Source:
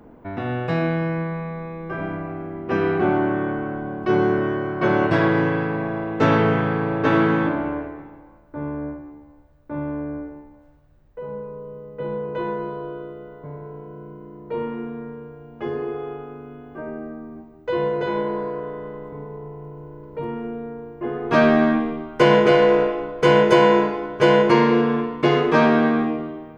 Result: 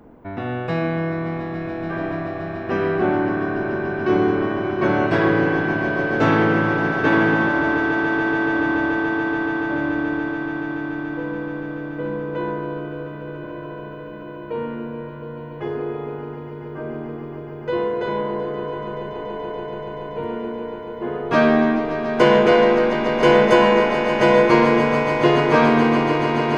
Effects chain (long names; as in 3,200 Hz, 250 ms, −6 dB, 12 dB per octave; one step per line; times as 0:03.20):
echo that builds up and dies away 143 ms, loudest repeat 8, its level −12 dB
dynamic equaliser 140 Hz, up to −5 dB, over −39 dBFS, Q 5.3